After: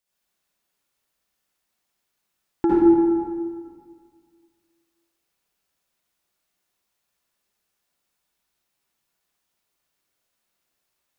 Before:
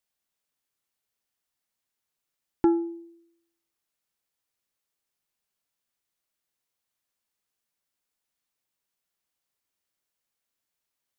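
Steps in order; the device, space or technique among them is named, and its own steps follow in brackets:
stairwell (convolution reverb RT60 1.9 s, pre-delay 53 ms, DRR −8.5 dB)

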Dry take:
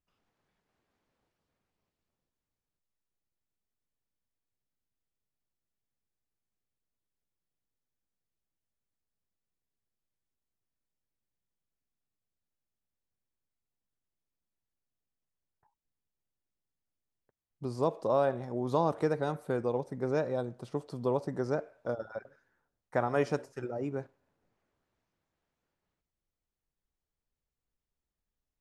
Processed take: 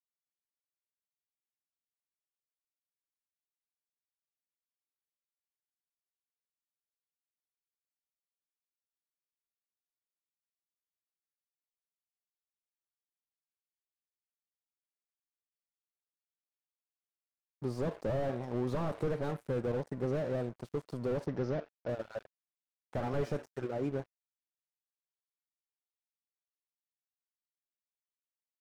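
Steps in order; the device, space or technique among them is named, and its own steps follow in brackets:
early transistor amplifier (dead-zone distortion −50.5 dBFS; slew-rate limiting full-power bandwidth 11 Hz)
0:21.26–0:21.89: Butterworth low-pass 6,000 Hz 36 dB per octave
level +2 dB

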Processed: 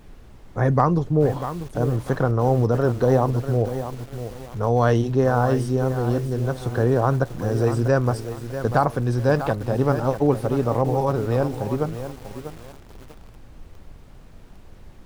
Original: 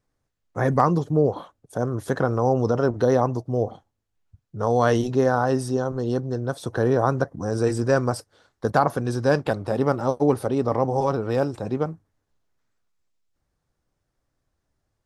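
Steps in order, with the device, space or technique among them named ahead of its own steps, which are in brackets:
car interior (parametric band 120 Hz +5.5 dB 0.62 octaves; high-shelf EQ 3,900 Hz −6 dB; brown noise bed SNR 19 dB)
feedback echo at a low word length 643 ms, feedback 35%, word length 6 bits, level −10 dB

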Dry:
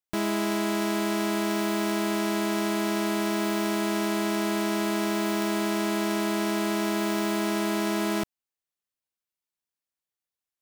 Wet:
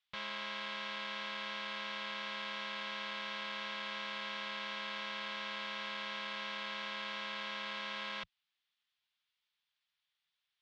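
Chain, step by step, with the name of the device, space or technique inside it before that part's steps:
scooped metal amplifier (tube saturation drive 47 dB, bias 0.75; loudspeaker in its box 95–4,000 Hz, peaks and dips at 95 Hz −9 dB, 170 Hz +4 dB, 350 Hz −6 dB, 610 Hz −6 dB, 3,400 Hz +5 dB; guitar amp tone stack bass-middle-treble 10-0-10)
level +18 dB

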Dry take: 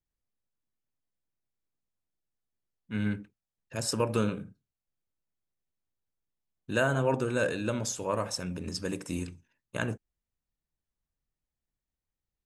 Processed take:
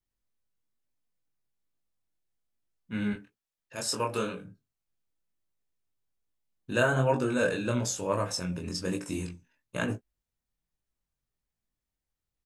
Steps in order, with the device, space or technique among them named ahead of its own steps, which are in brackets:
0:03.13–0:04.45: low-shelf EQ 300 Hz −11.5 dB
double-tracked vocal (double-tracking delay 17 ms −11 dB; chorus effect 1.1 Hz, delay 20 ms, depth 4.6 ms)
level +4 dB

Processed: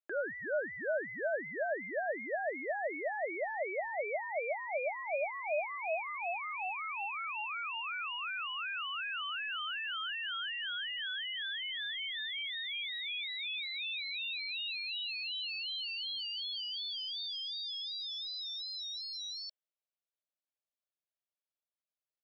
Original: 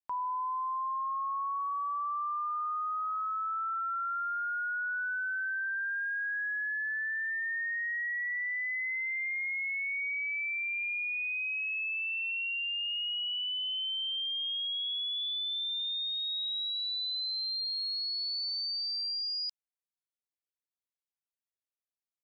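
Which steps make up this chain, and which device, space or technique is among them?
0:16.52–0:17.82: low-shelf EQ 260 Hz +11.5 dB
voice changer toy (ring modulator whose carrier an LFO sweeps 690 Hz, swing 40%, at 2.7 Hz; loudspeaker in its box 410–4,300 Hz, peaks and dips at 610 Hz +10 dB, 1,000 Hz −7 dB, 2,000 Hz −5 dB)

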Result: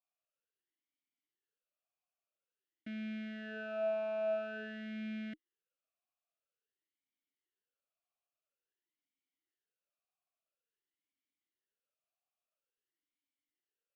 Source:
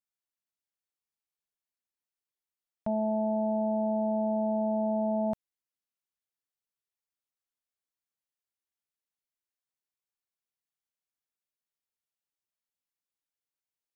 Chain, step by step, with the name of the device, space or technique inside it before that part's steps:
talk box (tube saturation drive 39 dB, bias 0.3; formant filter swept between two vowels a-i 0.49 Hz)
level +13 dB

